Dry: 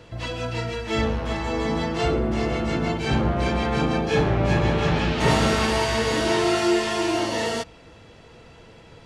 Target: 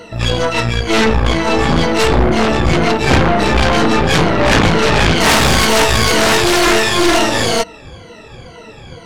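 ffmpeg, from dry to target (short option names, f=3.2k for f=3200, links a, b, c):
-af "afftfilt=real='re*pow(10,19/40*sin(2*PI*(1.9*log(max(b,1)*sr/1024/100)/log(2)-(-2.1)*(pts-256)/sr)))':imag='im*pow(10,19/40*sin(2*PI*(1.9*log(max(b,1)*sr/1024/100)/log(2)-(-2.1)*(pts-256)/sr)))':win_size=1024:overlap=0.75,aeval=exprs='0.708*(cos(1*acos(clip(val(0)/0.708,-1,1)))-cos(1*PI/2))+0.112*(cos(4*acos(clip(val(0)/0.708,-1,1)))-cos(4*PI/2))+0.0316*(cos(7*acos(clip(val(0)/0.708,-1,1)))-cos(7*PI/2))+0.0447*(cos(8*acos(clip(val(0)/0.708,-1,1)))-cos(8*PI/2))':c=same,aeval=exprs='0.841*sin(PI/2*3.55*val(0)/0.841)':c=same,volume=-3dB"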